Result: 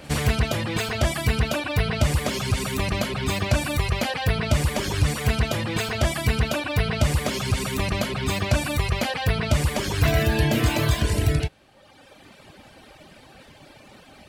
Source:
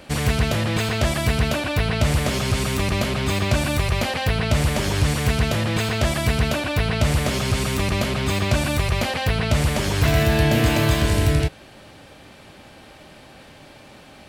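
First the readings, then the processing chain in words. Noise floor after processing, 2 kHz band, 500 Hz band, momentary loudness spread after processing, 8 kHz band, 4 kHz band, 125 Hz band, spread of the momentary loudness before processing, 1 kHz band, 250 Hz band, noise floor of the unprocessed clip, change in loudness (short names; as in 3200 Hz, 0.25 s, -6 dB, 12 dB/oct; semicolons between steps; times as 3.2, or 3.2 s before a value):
-51 dBFS, -2.5 dB, -3.0 dB, 4 LU, -2.5 dB, -2.5 dB, -2.5 dB, 4 LU, -2.5 dB, -3.5 dB, -46 dBFS, -2.5 dB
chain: pre-echo 66 ms -22 dB; reverb removal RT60 1.3 s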